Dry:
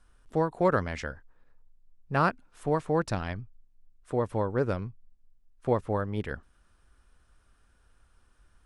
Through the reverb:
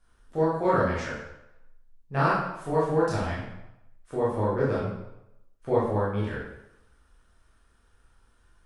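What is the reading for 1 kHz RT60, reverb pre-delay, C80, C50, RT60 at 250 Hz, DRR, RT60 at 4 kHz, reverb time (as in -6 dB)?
0.90 s, 16 ms, 4.5 dB, 0.5 dB, 0.80 s, -8.5 dB, 0.70 s, 0.85 s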